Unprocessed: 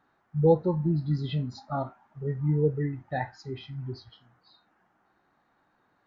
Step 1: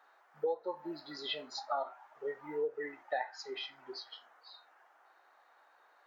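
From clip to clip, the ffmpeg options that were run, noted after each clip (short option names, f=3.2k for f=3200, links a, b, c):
-af "highpass=f=510:w=0.5412,highpass=f=510:w=1.3066,acompressor=threshold=-37dB:ratio=8,volume=5.5dB"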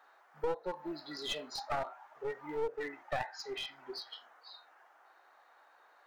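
-af "aeval=exprs='clip(val(0),-1,0.0112)':c=same,volume=2dB"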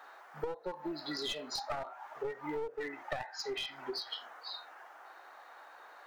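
-af "acompressor=threshold=-45dB:ratio=6,volume=9.5dB"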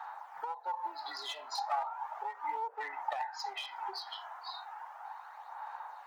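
-af "highpass=f=880:t=q:w=6.8,aphaser=in_gain=1:out_gain=1:delay=3:decay=0.37:speed=0.35:type=sinusoidal,volume=-4dB"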